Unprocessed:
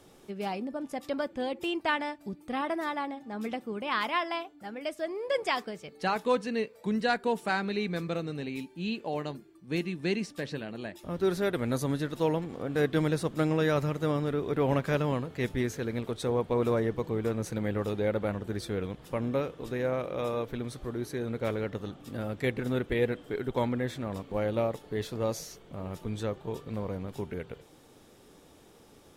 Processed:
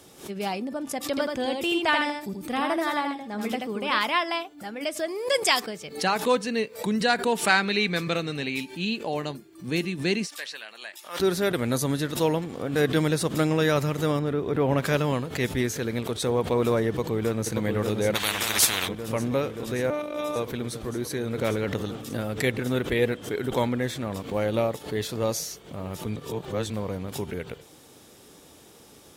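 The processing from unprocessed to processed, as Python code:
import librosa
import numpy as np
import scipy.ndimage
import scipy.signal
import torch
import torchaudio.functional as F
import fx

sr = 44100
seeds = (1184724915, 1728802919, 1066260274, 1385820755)

y = fx.echo_single(x, sr, ms=82, db=-4.0, at=(1.05, 3.99))
y = fx.high_shelf(y, sr, hz=4800.0, db=12.0, at=(5.08, 5.6))
y = fx.peak_eq(y, sr, hz=2400.0, db=6.5, octaves=2.3, at=(7.32, 8.85))
y = fx.highpass(y, sr, hz=1100.0, slope=12, at=(10.27, 11.2))
y = fx.high_shelf(y, sr, hz=2500.0, db=-10.0, at=(14.19, 14.78))
y = fx.echo_throw(y, sr, start_s=16.88, length_s=0.66, ms=580, feedback_pct=80, wet_db=-5.5)
y = fx.spectral_comp(y, sr, ratio=10.0, at=(18.14, 18.87), fade=0.02)
y = fx.robotise(y, sr, hz=298.0, at=(19.9, 20.36))
y = fx.transient(y, sr, attack_db=3, sustain_db=8, at=(21.41, 22.21))
y = fx.edit(y, sr, fx.reverse_span(start_s=26.16, length_s=0.54), tone=tone)
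y = scipy.signal.sosfilt(scipy.signal.butter(2, 50.0, 'highpass', fs=sr, output='sos'), y)
y = fx.high_shelf(y, sr, hz=3100.0, db=8.0)
y = fx.pre_swell(y, sr, db_per_s=140.0)
y = y * 10.0 ** (3.5 / 20.0)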